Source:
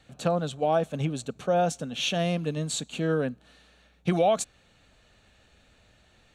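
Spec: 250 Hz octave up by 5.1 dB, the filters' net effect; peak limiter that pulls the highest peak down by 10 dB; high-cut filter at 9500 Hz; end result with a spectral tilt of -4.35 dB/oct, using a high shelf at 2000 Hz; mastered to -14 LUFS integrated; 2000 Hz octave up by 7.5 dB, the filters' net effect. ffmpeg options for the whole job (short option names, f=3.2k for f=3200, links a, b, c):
-af "lowpass=9.5k,equalizer=f=250:t=o:g=8,highshelf=f=2k:g=7,equalizer=f=2k:t=o:g=5.5,volume=13.5dB,alimiter=limit=-3.5dB:level=0:latency=1"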